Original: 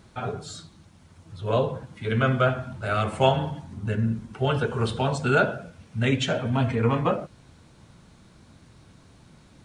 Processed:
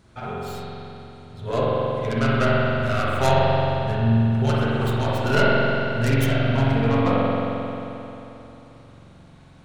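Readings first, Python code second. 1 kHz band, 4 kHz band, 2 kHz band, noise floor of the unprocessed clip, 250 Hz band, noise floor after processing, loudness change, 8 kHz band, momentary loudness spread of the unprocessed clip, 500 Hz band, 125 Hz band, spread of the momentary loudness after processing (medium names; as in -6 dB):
+4.0 dB, +2.0 dB, +4.0 dB, -54 dBFS, +5.0 dB, -48 dBFS, +4.0 dB, +1.5 dB, 13 LU, +3.5 dB, +5.0 dB, 15 LU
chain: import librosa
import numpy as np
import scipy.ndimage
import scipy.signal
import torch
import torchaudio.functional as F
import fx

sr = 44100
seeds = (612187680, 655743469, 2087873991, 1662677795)

y = fx.tracing_dist(x, sr, depth_ms=0.24)
y = fx.rev_spring(y, sr, rt60_s=3.2, pass_ms=(44,), chirp_ms=20, drr_db=-6.0)
y = y * librosa.db_to_amplitude(-3.5)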